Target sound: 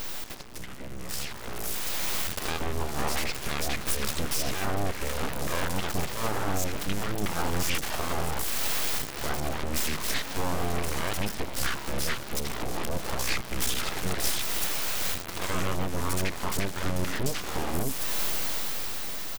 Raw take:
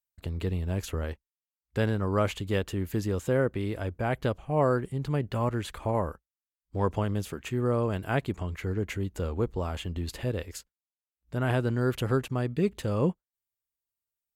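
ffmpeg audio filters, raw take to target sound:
-filter_complex "[0:a]aeval=exprs='val(0)+0.5*0.0282*sgn(val(0))':c=same,equalizer=f=62:w=1.4:g=-5.5,acrossover=split=720|5500[s0][s1][s2];[s1]adelay=60[s3];[s0]adelay=160[s4];[s4][s3][s2]amix=inputs=3:normalize=0,acontrast=31,alimiter=limit=0.0944:level=0:latency=1:release=277,highshelf=f=2700:g=10.5,bandreject=f=50:t=h:w=6,bandreject=f=100:t=h:w=6,bandreject=f=150:t=h:w=6,bandreject=f=200:t=h:w=6,asetrate=32667,aresample=44100,dynaudnorm=f=240:g=13:m=3.55,asplit=2[s5][s6];[s6]asetrate=29433,aresample=44100,atempo=1.49831,volume=0.158[s7];[s5][s7]amix=inputs=2:normalize=0,aeval=exprs='(tanh(2.24*val(0)+0.45)-tanh(0.45))/2.24':c=same,aeval=exprs='abs(val(0))':c=same,volume=0.473"

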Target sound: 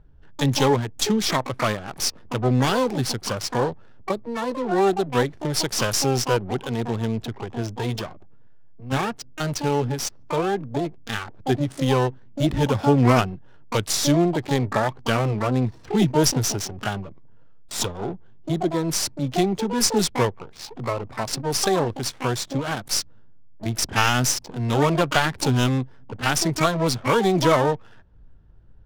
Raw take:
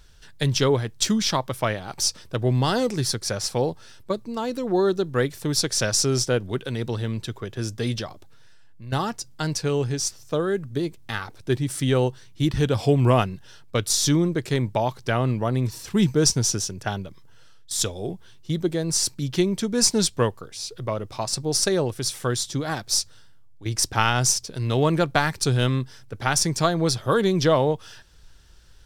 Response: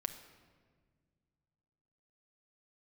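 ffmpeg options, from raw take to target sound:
-filter_complex "[0:a]asplit=2[s0][s1];[s1]asetrate=88200,aresample=44100,atempo=0.5,volume=0.562[s2];[s0][s2]amix=inputs=2:normalize=0,adynamicsmooth=sensitivity=7.5:basefreq=750"

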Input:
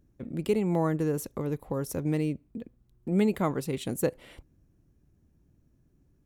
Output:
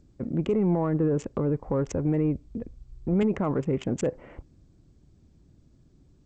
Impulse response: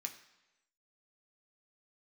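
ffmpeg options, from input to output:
-filter_complex "[0:a]asettb=1/sr,asplit=3[s0][s1][s2];[s0]atrim=end=1.504[s3];[s1]atrim=start=1.5:end=3.23,asetpts=PTS-STARTPTS,afade=t=in:d=0.004:c=qsin,afade=t=out:st=1.726:d=0.004:c=qsin,asubboost=boost=12:cutoff=80[s4];[s2]atrim=start=3.226[s5];[s3][s4]acrossfade=d=0.004:c1=hsin:c2=qsin[s6];[s6][s5]acrossfade=d=0.004:c1=qsin:c2=hsin,acrossover=split=1700[s7][s8];[s7]alimiter=limit=0.075:level=0:latency=1:release=16[s9];[s8]acrusher=bits=4:mix=0:aa=0.5[s10];[s9][s10]amix=inputs=2:normalize=0,asoftclip=type=tanh:threshold=0.1,aexciter=amount=1.2:drive=1.6:freq=2200,volume=2.24" -ar 16000 -c:a g722

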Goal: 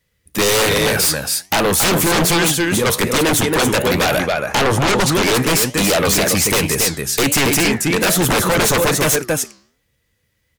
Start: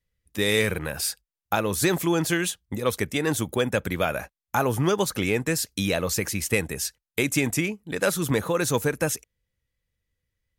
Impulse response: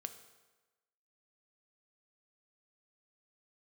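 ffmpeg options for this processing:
-filter_complex "[0:a]highpass=f=120:p=1,aecho=1:1:277:0.422,flanger=delay=6.1:depth=9.4:regen=86:speed=1.2:shape=triangular,asettb=1/sr,asplit=3[s0][s1][s2];[s0]atrim=end=4.194[s3];[s1]atrim=start=4.19:end=5.12,asetpts=PTS-STARTPTS,afade=t=in:d=0.004:c=qsin,afade=t=out:st=0.926:d=0.004:c=qsin,lowpass=8300[s4];[s2]atrim=start=5.116[s5];[s3][s4]acrossfade=d=0.004:c1=hsin:c2=qsin[s6];[s6][s5]acrossfade=d=0.004:c1=qsin:c2=hsin,aeval=exprs='0.266*sin(PI/2*7.08*val(0)/0.266)':c=same"

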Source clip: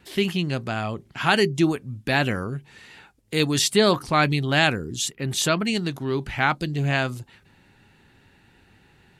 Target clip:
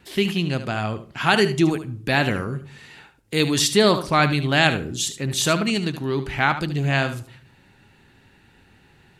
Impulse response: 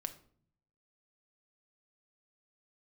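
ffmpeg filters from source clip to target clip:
-filter_complex "[0:a]asplit=2[s0][s1];[1:a]atrim=start_sample=2205,adelay=74[s2];[s1][s2]afir=irnorm=-1:irlink=0,volume=0.335[s3];[s0][s3]amix=inputs=2:normalize=0,volume=1.19"

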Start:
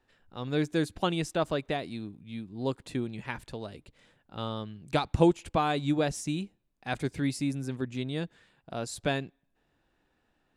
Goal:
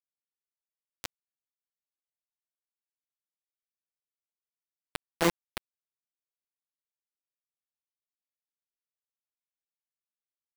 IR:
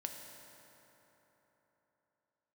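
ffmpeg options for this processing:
-filter_complex "[1:a]atrim=start_sample=2205,afade=t=out:st=0.14:d=0.01,atrim=end_sample=6615,asetrate=79380,aresample=44100[s0];[0:a][s0]afir=irnorm=-1:irlink=0,aeval=exprs='val(0)+0.00891*sin(2*PI*2100*n/s)':c=same,acrusher=bits=3:mix=0:aa=0.000001,volume=1.19"

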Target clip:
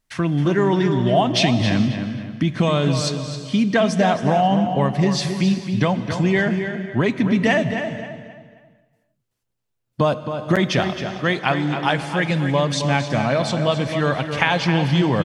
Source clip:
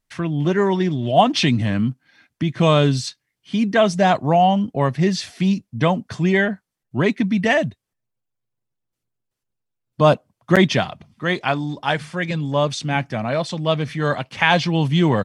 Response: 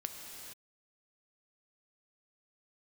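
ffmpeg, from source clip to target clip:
-filter_complex "[0:a]acompressor=threshold=0.126:ratio=6,asplit=2[s0][s1];[s1]adelay=267,lowpass=f=4500:p=1,volume=0.398,asplit=2[s2][s3];[s3]adelay=267,lowpass=f=4500:p=1,volume=0.36,asplit=2[s4][s5];[s5]adelay=267,lowpass=f=4500:p=1,volume=0.36,asplit=2[s6][s7];[s7]adelay=267,lowpass=f=4500:p=1,volume=0.36[s8];[s0][s2][s4][s6][s8]amix=inputs=5:normalize=0,asplit=2[s9][s10];[1:a]atrim=start_sample=2205[s11];[s10][s11]afir=irnorm=-1:irlink=0,volume=0.668[s12];[s9][s12]amix=inputs=2:normalize=0"

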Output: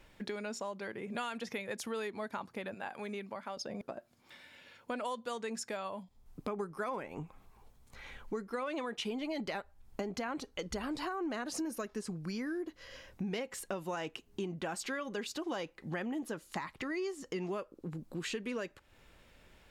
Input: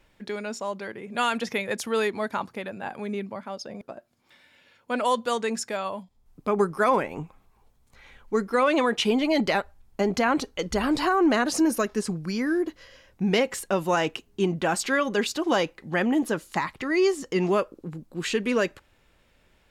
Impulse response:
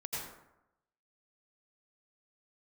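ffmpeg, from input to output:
-filter_complex "[0:a]asettb=1/sr,asplit=3[s0][s1][s2];[s0]atrim=end=2.744[s3];[s1]atrim=start=2.74:end=3.57,asetpts=PTS-STARTPTS,afade=t=in:d=0.004:c=qsin,afade=t=out:st=0.826:d=0.004:c=qsin,lowshelf=f=440:g=-10[s4];[s2]atrim=start=3.566[s5];[s3][s4]acrossfade=d=0.004:c1=hsin:c2=qsin[s6];[s6][s5]acrossfade=d=0.004:c1=qsin:c2=hsin,acompressor=threshold=0.01:ratio=4,volume=1.19"

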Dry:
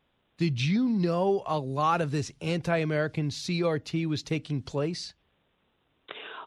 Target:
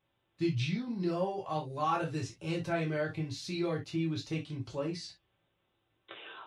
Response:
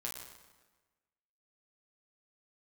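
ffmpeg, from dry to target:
-filter_complex "[1:a]atrim=start_sample=2205,afade=t=out:st=0.17:d=0.01,atrim=end_sample=7938,asetrate=79380,aresample=44100[s0];[0:a][s0]afir=irnorm=-1:irlink=0"

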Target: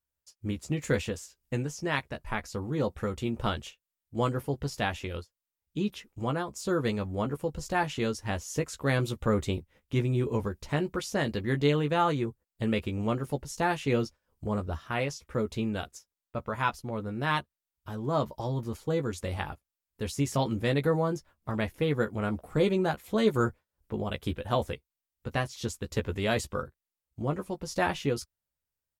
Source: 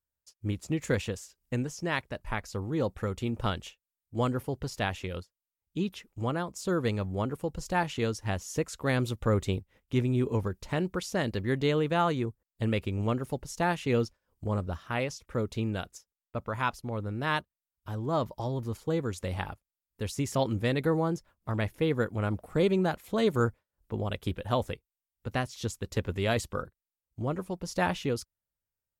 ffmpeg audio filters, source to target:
-filter_complex "[0:a]asplit=2[s0][s1];[s1]adelay=14,volume=0.473[s2];[s0][s2]amix=inputs=2:normalize=0"

